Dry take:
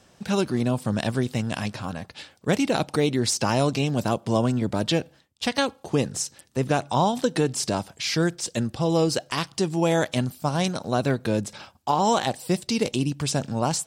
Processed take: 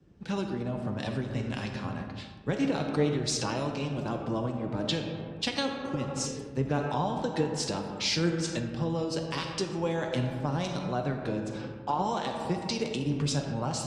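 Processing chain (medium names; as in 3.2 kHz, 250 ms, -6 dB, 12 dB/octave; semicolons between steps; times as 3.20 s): low-pass 6.1 kHz 12 dB/octave; band-stop 680 Hz, Q 13; algorithmic reverb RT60 2.2 s, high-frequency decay 0.45×, pre-delay 5 ms, DRR 3.5 dB; compression 4:1, threshold -26 dBFS, peak gain reduction 9 dB; flange 0.25 Hz, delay 5.6 ms, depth 2.3 ms, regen +64%; band noise 42–350 Hz -50 dBFS; spectral replace 5.80–6.24 s, 400–1400 Hz before; three bands expanded up and down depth 70%; trim +2.5 dB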